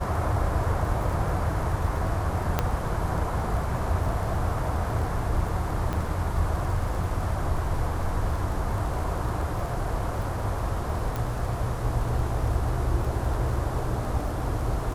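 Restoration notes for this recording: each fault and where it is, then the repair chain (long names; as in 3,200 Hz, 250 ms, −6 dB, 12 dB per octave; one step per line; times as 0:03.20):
surface crackle 27 per second −33 dBFS
0:02.59: click −9 dBFS
0:05.93: click −17 dBFS
0:11.16: click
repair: click removal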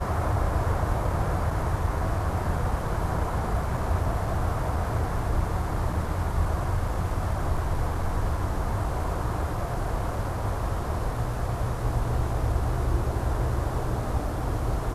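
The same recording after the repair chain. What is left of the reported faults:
0:11.16: click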